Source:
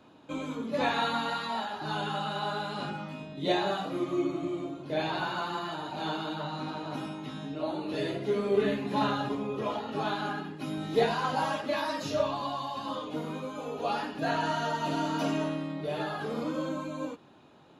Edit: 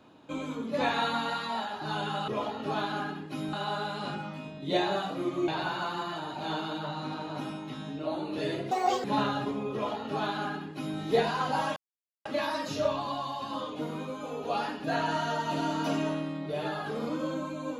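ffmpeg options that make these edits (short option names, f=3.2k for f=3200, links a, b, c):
-filter_complex "[0:a]asplit=7[a][b][c][d][e][f][g];[a]atrim=end=2.282[h];[b]atrim=start=9.568:end=10.822[i];[c]atrim=start=2.278:end=4.232[j];[d]atrim=start=5.038:end=8.274[k];[e]atrim=start=8.27:end=8.88,asetpts=PTS-STARTPTS,asetrate=80703,aresample=44100[l];[f]atrim=start=8.876:end=11.6,asetpts=PTS-STARTPTS,afade=t=out:st=2.72:d=0.004:c=hsin,apad=pad_dur=0.49[m];[g]atrim=start=11.6,asetpts=PTS-STARTPTS,afade=t=in:d=0.004:c=hsin[n];[h][i]acrossfade=d=0.004:c1=hsin:c2=hsin[o];[o][j]acrossfade=d=0.004:c1=hsin:c2=hsin[p];[p][k]acrossfade=d=0.004:c1=hsin:c2=hsin[q];[q][l]acrossfade=d=0.004:c1=hsin:c2=hsin[r];[m][n]concat=n=2:v=0:a=1[s];[r][s]acrossfade=d=0.004:c1=hsin:c2=hsin"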